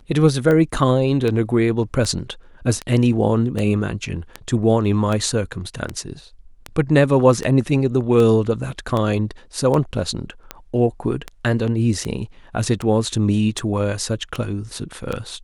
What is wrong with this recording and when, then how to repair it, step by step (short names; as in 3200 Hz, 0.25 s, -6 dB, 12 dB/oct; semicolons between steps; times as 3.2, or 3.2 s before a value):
tick 78 rpm -11 dBFS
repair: de-click